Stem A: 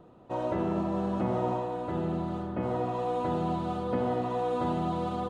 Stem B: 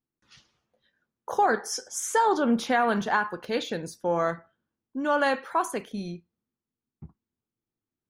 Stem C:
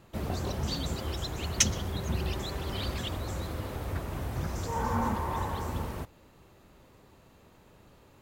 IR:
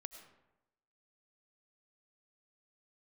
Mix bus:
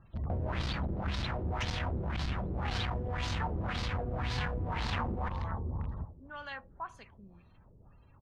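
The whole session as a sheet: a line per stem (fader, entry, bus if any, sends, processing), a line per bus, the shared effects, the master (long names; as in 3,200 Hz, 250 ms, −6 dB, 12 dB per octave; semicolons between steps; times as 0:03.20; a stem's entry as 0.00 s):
−5.5 dB, 0.00 s, send −2.5 dB, echo send −20 dB, comparator with hysteresis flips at −42 dBFS
−16.5 dB, 1.25 s, no send, echo send −23 dB, no processing
−5.5 dB, 0.00 s, no send, echo send −15.5 dB, gate on every frequency bin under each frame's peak −20 dB strong; low-shelf EQ 430 Hz +9.5 dB; wave folding −19 dBFS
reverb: on, RT60 0.95 s, pre-delay 60 ms
echo: repeating echo 81 ms, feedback 55%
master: parametric band 380 Hz −12.5 dB 2 octaves; auto-filter low-pass sine 1.9 Hz 390–4,700 Hz; saturating transformer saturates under 170 Hz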